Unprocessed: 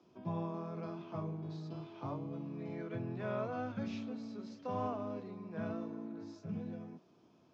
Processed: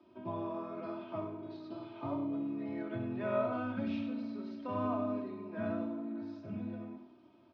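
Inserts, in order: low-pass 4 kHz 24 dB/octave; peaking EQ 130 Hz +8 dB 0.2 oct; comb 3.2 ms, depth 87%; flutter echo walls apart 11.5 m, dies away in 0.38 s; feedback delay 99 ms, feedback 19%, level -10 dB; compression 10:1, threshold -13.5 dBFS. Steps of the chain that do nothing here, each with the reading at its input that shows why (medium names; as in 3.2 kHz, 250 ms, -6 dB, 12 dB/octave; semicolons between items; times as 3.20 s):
compression, threshold -13.5 dBFS: peak at its input -21.5 dBFS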